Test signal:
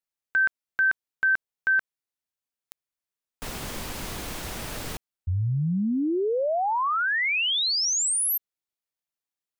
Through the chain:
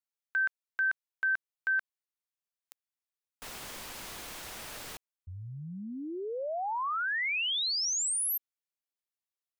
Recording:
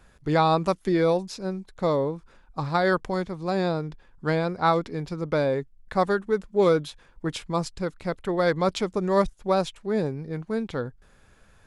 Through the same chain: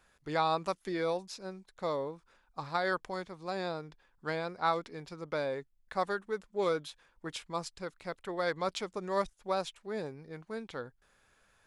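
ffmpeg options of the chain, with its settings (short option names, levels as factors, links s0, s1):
-af "lowshelf=f=380:g=-12,volume=0.501"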